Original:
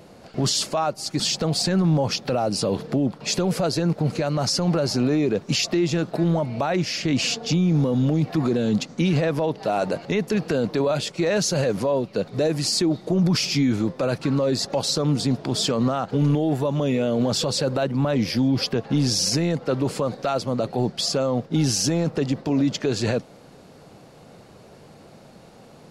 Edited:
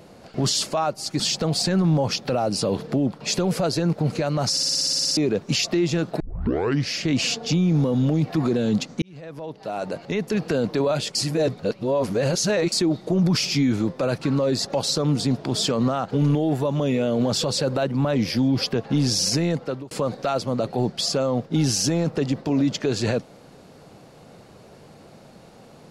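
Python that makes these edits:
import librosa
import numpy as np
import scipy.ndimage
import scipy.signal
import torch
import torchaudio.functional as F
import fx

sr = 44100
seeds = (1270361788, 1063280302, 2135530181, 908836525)

y = fx.edit(x, sr, fx.stutter_over(start_s=4.51, slice_s=0.06, count=11),
    fx.tape_start(start_s=6.2, length_s=0.71),
    fx.fade_in_span(start_s=9.02, length_s=1.48),
    fx.reverse_span(start_s=11.15, length_s=1.57),
    fx.fade_out_span(start_s=19.56, length_s=0.35), tone=tone)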